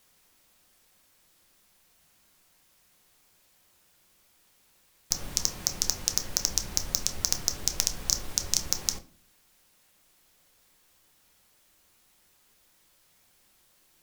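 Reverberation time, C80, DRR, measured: 0.45 s, 21.0 dB, 7.0 dB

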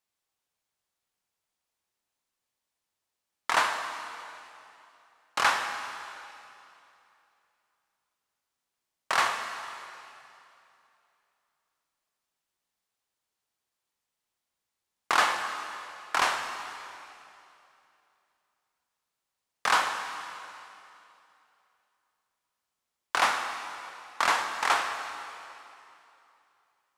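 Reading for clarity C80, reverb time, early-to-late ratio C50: 6.5 dB, 2.8 s, 6.0 dB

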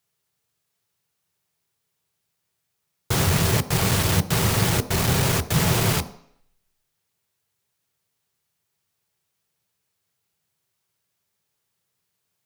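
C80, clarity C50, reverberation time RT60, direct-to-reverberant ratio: 18.5 dB, 16.0 dB, 0.65 s, 10.0 dB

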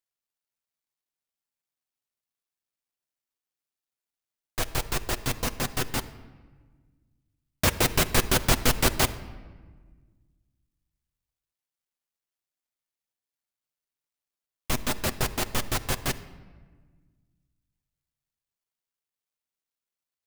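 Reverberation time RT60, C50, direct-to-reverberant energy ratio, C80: 1.5 s, 15.0 dB, 9.0 dB, 16.5 dB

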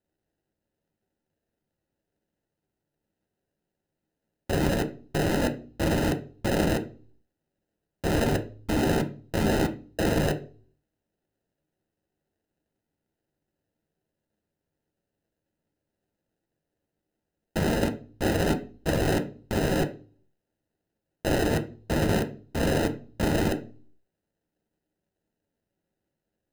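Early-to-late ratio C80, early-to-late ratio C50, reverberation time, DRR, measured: 19.5 dB, 14.0 dB, 0.40 s, 4.0 dB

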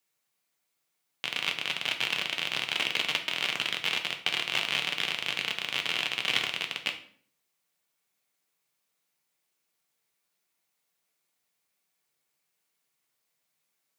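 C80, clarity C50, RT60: 14.5 dB, 10.5 dB, 0.55 s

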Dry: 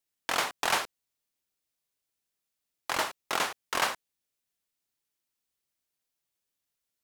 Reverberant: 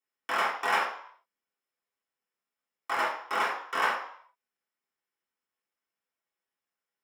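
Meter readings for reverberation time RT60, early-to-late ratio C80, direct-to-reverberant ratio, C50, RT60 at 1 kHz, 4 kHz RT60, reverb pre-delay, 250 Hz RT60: 0.60 s, 9.5 dB, -10.0 dB, 5.5 dB, 0.70 s, 0.60 s, 3 ms, 0.50 s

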